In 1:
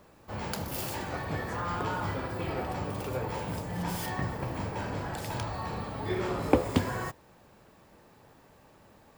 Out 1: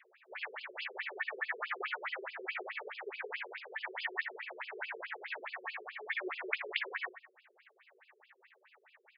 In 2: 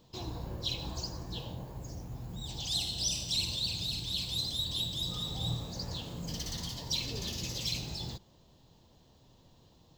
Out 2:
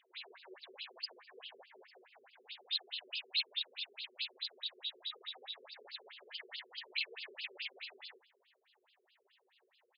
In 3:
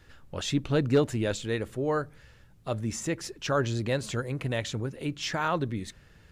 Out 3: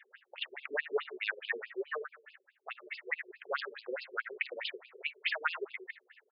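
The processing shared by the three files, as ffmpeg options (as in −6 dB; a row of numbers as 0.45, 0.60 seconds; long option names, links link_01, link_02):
-filter_complex "[0:a]equalizer=frequency=250:width_type=o:width=1:gain=-3,equalizer=frequency=500:width_type=o:width=1:gain=-10,equalizer=frequency=1000:width_type=o:width=1:gain=-10,equalizer=frequency=2000:width_type=o:width=1:gain=11,equalizer=frequency=4000:width_type=o:width=1:gain=-8,equalizer=frequency=8000:width_type=o:width=1:gain=-4,asplit=2[link_01][link_02];[link_02]adelay=78,lowpass=frequency=2200:poles=1,volume=-12dB,asplit=2[link_03][link_04];[link_04]adelay=78,lowpass=frequency=2200:poles=1,volume=0.39,asplit=2[link_05][link_06];[link_06]adelay=78,lowpass=frequency=2200:poles=1,volume=0.39,asplit=2[link_07][link_08];[link_08]adelay=78,lowpass=frequency=2200:poles=1,volume=0.39[link_09];[link_01][link_03][link_05][link_07][link_09]amix=inputs=5:normalize=0,afftfilt=real='re*(1-between(b*sr/4096,160,360))':imag='im*(1-between(b*sr/4096,160,360))':win_size=4096:overlap=0.75,asplit=2[link_10][link_11];[link_11]aeval=exprs='(mod(15*val(0)+1,2)-1)/15':channel_layout=same,volume=-10dB[link_12];[link_10][link_12]amix=inputs=2:normalize=0,afftfilt=real='re*between(b*sr/1024,330*pow(3700/330,0.5+0.5*sin(2*PI*4.7*pts/sr))/1.41,330*pow(3700/330,0.5+0.5*sin(2*PI*4.7*pts/sr))*1.41)':imag='im*between(b*sr/1024,330*pow(3700/330,0.5+0.5*sin(2*PI*4.7*pts/sr))/1.41,330*pow(3700/330,0.5+0.5*sin(2*PI*4.7*pts/sr))*1.41)':win_size=1024:overlap=0.75,volume=4dB"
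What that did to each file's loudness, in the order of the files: −6.5, −7.0, −8.0 LU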